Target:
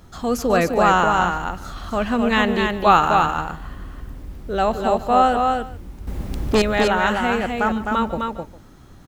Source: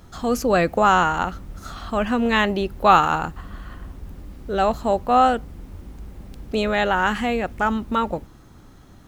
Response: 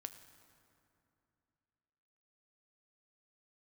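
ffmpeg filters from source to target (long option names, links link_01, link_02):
-filter_complex "[0:a]asplit=2[link_01][link_02];[link_02]aecho=0:1:147:0.141[link_03];[link_01][link_03]amix=inputs=2:normalize=0,asettb=1/sr,asplit=3[link_04][link_05][link_06];[link_04]atrim=end=6.074[link_07];[link_05]atrim=start=6.07:end=6.62,asetpts=PTS-STARTPTS,afade=type=in:duration=0.004:curve=qsin,afade=type=out:start_time=0.546:duration=0.004:curve=qsin,aeval=exprs='0.282*sin(PI/2*2.24*val(0)/0.282)':channel_layout=same[link_08];[link_06]atrim=start=6.616[link_09];[link_07][link_08]acrossfade=duration=0.004:curve1=hsin:curve2=qsin[link_10];[link_10][link_09]acrossfade=duration=0.004:curve1=qsin:curve2=hsin,asplit=2[link_11][link_12];[link_12]aecho=0:1:258:0.631[link_13];[link_11][link_13]amix=inputs=2:normalize=0"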